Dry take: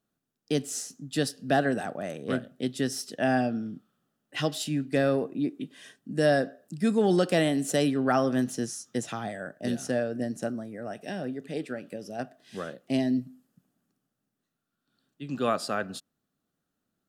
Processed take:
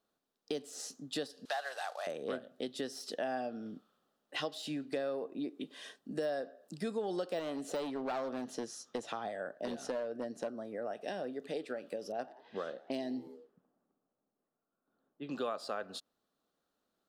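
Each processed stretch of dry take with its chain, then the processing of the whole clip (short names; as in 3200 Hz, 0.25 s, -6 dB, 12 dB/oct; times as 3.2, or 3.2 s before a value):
1.45–2.07 CVSD 64 kbps + HPF 750 Hz 24 dB/oct + bell 4300 Hz +6 dB 1.3 oct
7.39–11.08 high shelf 5700 Hz -8 dB + hard clip -23.5 dBFS
12.12–15.37 low-pass opened by the level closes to 1000 Hz, open at -28 dBFS + frequency-shifting echo 87 ms, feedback 46%, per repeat +75 Hz, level -23 dB
whole clip: de-esser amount 75%; ten-band EQ 125 Hz -9 dB, 500 Hz +8 dB, 1000 Hz +8 dB, 4000 Hz +8 dB; compressor 4:1, threshold -31 dBFS; gain -5 dB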